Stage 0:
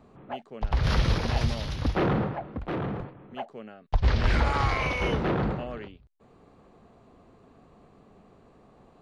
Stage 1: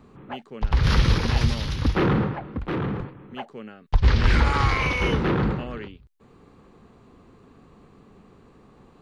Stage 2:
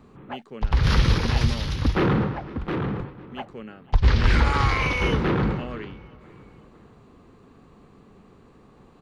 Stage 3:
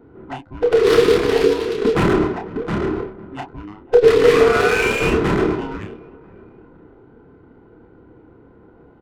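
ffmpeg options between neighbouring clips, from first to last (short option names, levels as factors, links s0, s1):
-af "equalizer=f=660:t=o:w=0.54:g=-9.5,volume=1.78"
-filter_complex "[0:a]asplit=2[s0][s1];[s1]adelay=499,lowpass=f=4200:p=1,volume=0.0891,asplit=2[s2][s3];[s3]adelay=499,lowpass=f=4200:p=1,volume=0.47,asplit=2[s4][s5];[s5]adelay=499,lowpass=f=4200:p=1,volume=0.47[s6];[s0][s2][s4][s6]amix=inputs=4:normalize=0"
-filter_complex "[0:a]afftfilt=real='real(if(between(b,1,1008),(2*floor((b-1)/24)+1)*24-b,b),0)':imag='imag(if(between(b,1,1008),(2*floor((b-1)/24)+1)*24-b,b),0)*if(between(b,1,1008),-1,1)':win_size=2048:overlap=0.75,adynamicsmooth=sensitivity=5:basefreq=1300,asplit=2[s0][s1];[s1]adelay=29,volume=0.562[s2];[s0][s2]amix=inputs=2:normalize=0,volume=1.58"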